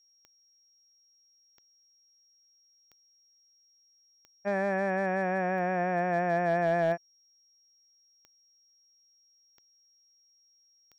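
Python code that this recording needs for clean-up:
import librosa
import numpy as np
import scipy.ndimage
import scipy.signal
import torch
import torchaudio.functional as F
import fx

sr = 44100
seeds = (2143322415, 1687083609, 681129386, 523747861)

y = fx.fix_declip(x, sr, threshold_db=-20.0)
y = fx.fix_declick_ar(y, sr, threshold=10.0)
y = fx.notch(y, sr, hz=5600.0, q=30.0)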